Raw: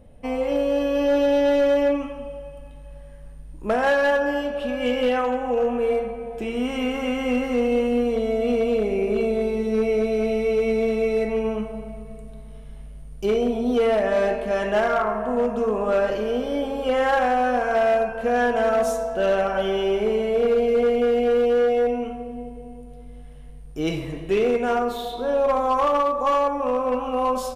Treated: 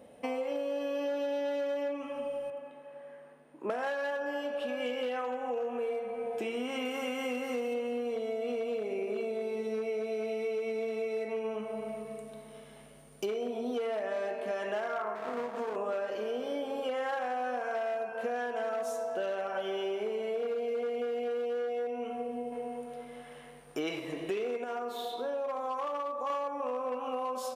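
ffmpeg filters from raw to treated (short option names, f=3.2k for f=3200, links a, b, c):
-filter_complex "[0:a]asettb=1/sr,asplit=3[a][b][c];[a]atrim=end=2.504[d];[b]atrim=start=2.5:end=3.7,asetpts=PTS-STARTPTS,afade=t=in:d=0.004:c=qsin,afade=t=out:st=1.196:d=0.004:c=qsin,acrossover=split=180 2600:gain=0.0631 1 0.158[e][f][g];[e][f][g]amix=inputs=3:normalize=0[h];[c]atrim=start=3.696[i];[d][h]acrossfade=d=0.004:c1=hsin:c2=qsin[j];[j][i]acrossfade=d=0.004:c1=qsin:c2=hsin,asettb=1/sr,asplit=3[k][l][m];[k]atrim=end=6.854[n];[l]atrim=start=6.85:end=7.74,asetpts=PTS-STARTPTS,afade=t=in:d=0.004:c=qsin,afade=t=out:st=0.886:d=0.004:c=qsin,highshelf=f=6.8k:g=9.5[o];[m]atrim=start=7.736[p];[n][o]acrossfade=d=0.004:c1=hsin:c2=qsin[q];[q][p]acrossfade=d=0.004:c1=qsin:c2=hsin,asettb=1/sr,asplit=3[r][s][t];[r]atrim=end=15.154[u];[s]atrim=start=15.15:end=15.76,asetpts=PTS-STARTPTS,afade=t=in:d=0.004:c=qsin,afade=t=out:st=0.606:d=0.004:c=qsin,aeval=exprs='max(val(0),0)':c=same[v];[t]atrim=start=15.756[w];[u][v]acrossfade=d=0.004:c1=hsin:c2=qsin[x];[x][w]acrossfade=d=0.004:c1=qsin:c2=hsin,asettb=1/sr,asplit=3[y][z][aa];[y]atrim=end=22.524[ab];[z]atrim=start=22.52:end=24,asetpts=PTS-STARTPTS,afade=t=in:d=0.004:c=qsin,afade=t=out:st=1.476:d=0.004:c=qsin,equalizer=f=1.4k:w=0.55:g=8[ac];[aa]atrim=start=23.996[ad];[ab][ac]acrossfade=d=0.004:c1=hsin:c2=qsin[ae];[ae][ad]acrossfade=d=0.004:c1=qsin:c2=hsin,asplit=3[af][ag][ah];[af]atrim=end=24.642[ai];[ag]atrim=start=24.638:end=26.302,asetpts=PTS-STARTPTS,volume=-7dB[aj];[ah]atrim=start=26.298[ak];[ai][aj]acrossfade=d=0.004:c1=hsin:c2=hsin[al];[al][ak]acrossfade=d=0.004:c1=hsin:c2=hsin,highpass=310,acompressor=threshold=-35dB:ratio=6,volume=2.5dB"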